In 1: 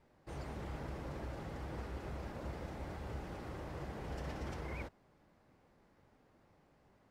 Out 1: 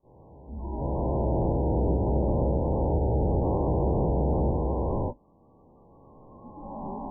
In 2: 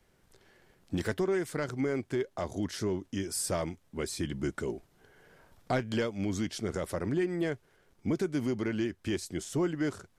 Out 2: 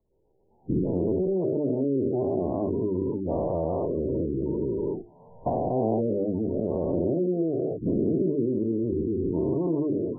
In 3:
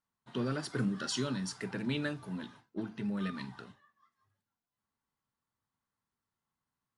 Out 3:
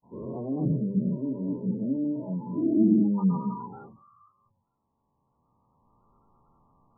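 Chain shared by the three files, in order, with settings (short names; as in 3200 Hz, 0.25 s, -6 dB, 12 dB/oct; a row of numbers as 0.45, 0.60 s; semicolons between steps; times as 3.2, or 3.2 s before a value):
spectral dilation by 0.48 s; recorder AGC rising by 9.7 dB/s; Chebyshev low-pass 1000 Hz, order 4; notches 50/100/150/200/250/300/350 Hz; spectral gate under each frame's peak -20 dB strong; spectral noise reduction 14 dB; treble ducked by the level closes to 680 Hz, closed at -21.5 dBFS; match loudness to -27 LUFS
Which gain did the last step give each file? +2.0, 0.0, +6.5 dB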